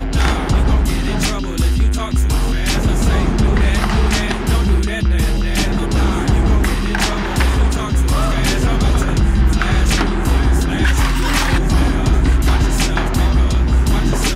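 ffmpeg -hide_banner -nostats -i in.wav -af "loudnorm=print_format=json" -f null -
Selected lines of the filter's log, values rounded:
"input_i" : "-16.5",
"input_tp" : "-4.1",
"input_lra" : "1.0",
"input_thresh" : "-26.5",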